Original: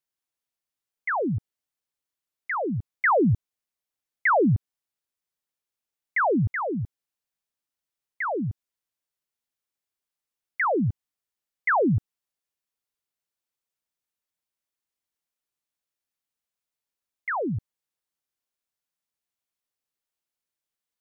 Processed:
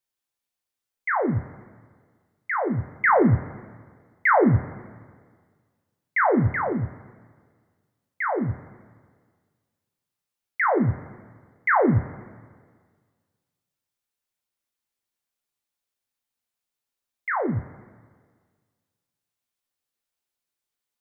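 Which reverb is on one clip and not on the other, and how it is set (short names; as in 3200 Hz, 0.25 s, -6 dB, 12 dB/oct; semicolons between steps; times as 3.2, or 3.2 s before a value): two-slope reverb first 0.27 s, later 1.7 s, from -17 dB, DRR 4 dB; gain +1 dB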